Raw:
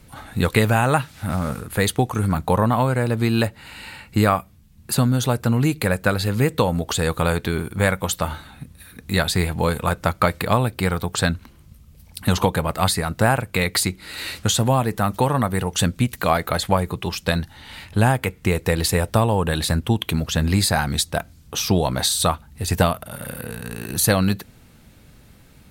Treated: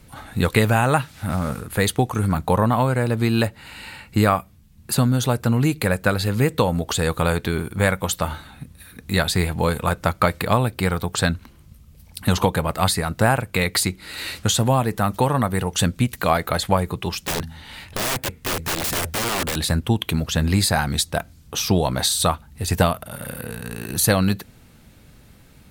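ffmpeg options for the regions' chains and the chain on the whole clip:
-filter_complex "[0:a]asettb=1/sr,asplit=3[a][b][c];[a]atrim=end=17.264[d];[b]atrim=start=17.26:end=19.56,asetpts=PTS-STARTPTS,afade=t=in:d=0.004:c=qsin,afade=t=out:st=2.296:d=0.004:c=qsin,bandreject=f=81.03:t=h:w=4,bandreject=f=162.06:t=h:w=4,bandreject=f=243.09:t=h:w=4,aeval=exprs='(mod(8.41*val(0)+1,2)-1)/8.41':c=same[e];[c]atrim=start=19.556[f];[d][e]acrossfade=d=0.004:c1=hsin:c2=qsin[g];[g][f]acrossfade=d=0.004:c1=qsin:c2=hsin"

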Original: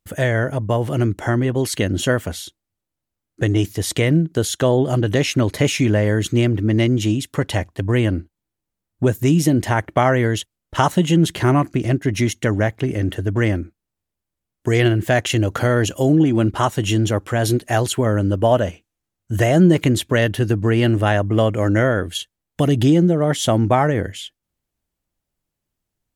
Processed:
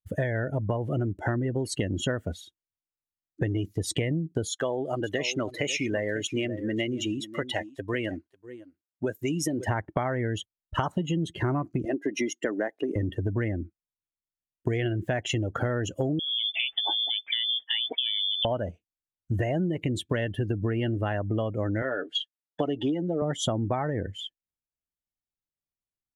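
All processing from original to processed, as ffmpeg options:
-filter_complex "[0:a]asettb=1/sr,asplit=3[a][b][c];[a]atrim=end=4.494[d];[b]atrim=start=4.49:end=9.67,asetpts=PTS-STARTPTS,afade=t=in:d=0.004:c=qsin,afade=t=out:st=5.176:d=0.004:c=qsin,highpass=f=750:p=1,aecho=1:1:546:0.251,atrim=end_sample=228438[e];[c]atrim=start=9.666[f];[d][e]acrossfade=d=0.004:c1=hsin:c2=qsin[g];[g][f]acrossfade=d=0.004:c1=qsin:c2=hsin,asettb=1/sr,asplit=3[h][i][j];[h]atrim=end=11.854[k];[i]atrim=start=11.85:end=12.96,asetpts=PTS-STARTPTS,afade=t=in:d=0.004:c=qsin,afade=t=out:st=1.106:d=0.004:c=qsin,highpass=f=260:w=0.5412,highpass=f=260:w=1.3066,bandreject=f=2.2k:w=17[l];[j]atrim=start=12.956[m];[k][l]acrossfade=d=0.004:c1=hsin:c2=qsin[n];[n][m]acrossfade=d=0.004:c1=qsin:c2=hsin,asettb=1/sr,asplit=3[o][p][q];[o]atrim=end=16.194[r];[p]atrim=start=16.19:end=18.45,asetpts=PTS-STARTPTS,afade=t=in:d=0.004:c=qsin,afade=t=out:st=2.256:d=0.004:c=qsin,lowpass=f=3.1k:t=q:w=0.5098,lowpass=f=3.1k:t=q:w=0.6013,lowpass=f=3.1k:t=q:w=0.9,lowpass=f=3.1k:t=q:w=2.563,afreqshift=-3600,acompressor=threshold=-19dB:ratio=4:attack=3.2:release=140:knee=1:detection=peak[s];[q]atrim=start=18.446[t];[r][s]acrossfade=d=0.004:c1=hsin:c2=qsin[u];[u][t]acrossfade=d=0.004:c1=qsin:c2=hsin,asettb=1/sr,asplit=3[v][w][x];[v]atrim=end=21.824[y];[w]atrim=start=21.82:end=23.22,asetpts=PTS-STARTPTS,afade=t=in:d=0.004:c=qsin,afade=t=out:st=1.396:d=0.004:c=qsin,highpass=340,lowpass=5.4k,aecho=1:1:7:0.49,atrim=end_sample=61740[z];[x]atrim=start=23.216[aa];[y][z]acrossfade=d=0.004:c1=hsin:c2=qsin[ab];[ab][aa]acrossfade=d=0.004:c1=qsin:c2=hsin,afftdn=nr=21:nf=-26,acompressor=threshold=-24dB:ratio=12"

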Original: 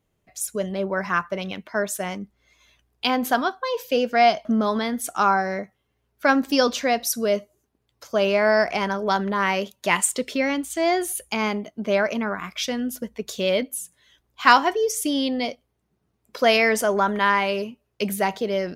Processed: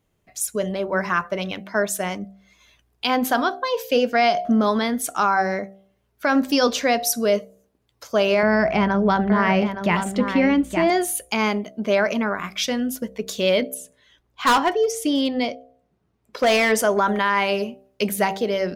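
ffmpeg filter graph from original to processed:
-filter_complex "[0:a]asettb=1/sr,asplit=3[a][b][c];[a]atrim=end=8.434[d];[b]atrim=start=8.43:end=10.9,asetpts=PTS-STARTPTS,afade=t=in:d=0.004:c=qsin,afade=t=out:st=2.466:d=0.004:c=qsin,bass=f=250:g=13,treble=f=4k:g=-13,aecho=1:1:868:0.355,atrim=end_sample=108927,deesser=0.6[e];[c]atrim=start=10.896[f];[d][e]acrossfade=d=0.004:c1=hsin:c2=qsin[g];[g][f]acrossfade=d=0.004:c1=qsin:c2=hsin,asettb=1/sr,asplit=3[h][i][j];[h]atrim=end=13.744[k];[i]atrim=start=13.74:end=16.72,asetpts=PTS-STARTPTS,afade=t=in:d=0.004:c=qsin,afade=t=out:st=2.976:d=0.004:c=qsin,lowpass=f=4k:p=1,asoftclip=type=hard:threshold=-16dB[l];[j]atrim=start=16.716[m];[k][l]acrossfade=d=0.004:c1=hsin:c2=qsin[n];[n][m]acrossfade=d=0.004:c1=qsin:c2=hsin,bandreject=f=64.78:t=h:w=4,bandreject=f=129.56:t=h:w=4,bandreject=f=194.34:t=h:w=4,bandreject=f=259.12:t=h:w=4,bandreject=f=323.9:t=h:w=4,bandreject=f=388.68:t=h:w=4,bandreject=f=453.46:t=h:w=4,bandreject=f=518.24:t=h:w=4,bandreject=f=583.02:t=h:w=4,bandreject=f=647.8:t=h:w=4,bandreject=f=712.58:t=h:w=4,bandreject=f=777.36:t=h:w=4,alimiter=level_in=11dB:limit=-1dB:release=50:level=0:latency=1,volume=-8dB"

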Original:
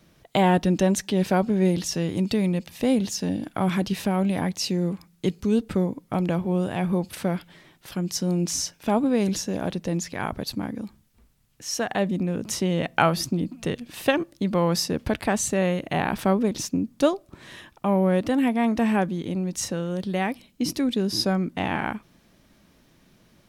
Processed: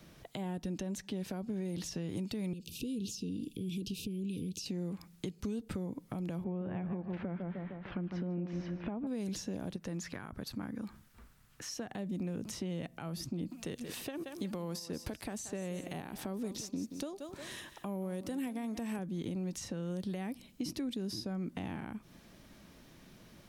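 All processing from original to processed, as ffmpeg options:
-filter_complex "[0:a]asettb=1/sr,asplit=3[a][b][c];[a]atrim=end=2.534[d];[b]atrim=start=2.53:end=4.66,asetpts=PTS-STARTPTS,afade=t=in:d=0.004:c=qsin,afade=t=out:st=2.126:d=0.004:c=qsin,acompressor=threshold=-35dB:ratio=3:attack=3.2:release=140:knee=1:detection=peak,asuperstop=centerf=1100:order=20:qfactor=0.53[e];[c]atrim=start=4.656[f];[d][e]acrossfade=d=0.004:c1=hsin:c2=qsin[g];[g][f]acrossfade=d=0.004:c1=qsin:c2=hsin,asettb=1/sr,asplit=3[h][i][j];[h]atrim=end=6.444[k];[i]atrim=start=6.44:end=9.07,asetpts=PTS-STARTPTS,afade=t=in:d=0.004:c=qsin,afade=t=out:st=2.626:d=0.004:c=qsin,lowpass=f=2.4k:w=0.5412,lowpass=f=2.4k:w=1.3066,asplit=2[l][m];[m]adelay=153,lowpass=f=1.9k:p=1,volume=-8dB,asplit=2[n][o];[o]adelay=153,lowpass=f=1.9k:p=1,volume=0.47,asplit=2[p][q];[q]adelay=153,lowpass=f=1.9k:p=1,volume=0.47,asplit=2[r][s];[s]adelay=153,lowpass=f=1.9k:p=1,volume=0.47,asplit=2[t][u];[u]adelay=153,lowpass=f=1.9k:p=1,volume=0.47[v];[l][n][p][r][t][v]amix=inputs=6:normalize=0,atrim=end_sample=115983[w];[j]atrim=start=9.066[x];[k][w]acrossfade=d=0.004:c1=hsin:c2=qsin[y];[y][x]acrossfade=d=0.004:c1=qsin:c2=hsin,asettb=1/sr,asplit=3[z][aa][ab];[z]atrim=end=9.764[ac];[aa]atrim=start=9.76:end=11.7,asetpts=PTS-STARTPTS,afade=t=in:d=0.004:c=qsin,afade=t=out:st=1.936:d=0.004:c=qsin,equalizer=f=1.4k:t=o:w=1.1:g=9.5,acompressor=threshold=-49dB:ratio=1.5:attack=3.2:release=140:knee=1:detection=peak[ad];[ab]atrim=start=11.696[ae];[ac][ad]acrossfade=d=0.004:c1=hsin:c2=qsin[af];[af][ae]acrossfade=d=0.004:c1=qsin:c2=hsin,asettb=1/sr,asplit=3[ag][ah][ai];[ag]atrim=end=13.504[aj];[ah]atrim=start=13.5:end=18.99,asetpts=PTS-STARTPTS,afade=t=in:d=0.004:c=qsin,afade=t=out:st=5.486:d=0.004:c=qsin,bass=f=250:g=-6,treble=f=4k:g=5,aecho=1:1:178|356:0.15|0.0374,atrim=end_sample=242109[ak];[ai]atrim=start=18.986[al];[aj][ak]acrossfade=d=0.004:c1=hsin:c2=qsin[am];[am][al]acrossfade=d=0.004:c1=qsin:c2=hsin,acompressor=threshold=-34dB:ratio=2,alimiter=level_in=1dB:limit=-24dB:level=0:latency=1:release=206,volume=-1dB,acrossover=split=360|5400[an][ao][ap];[an]acompressor=threshold=-37dB:ratio=4[aq];[ao]acompressor=threshold=-47dB:ratio=4[ar];[ap]acompressor=threshold=-50dB:ratio=4[as];[aq][ar][as]amix=inputs=3:normalize=0,volume=1dB"

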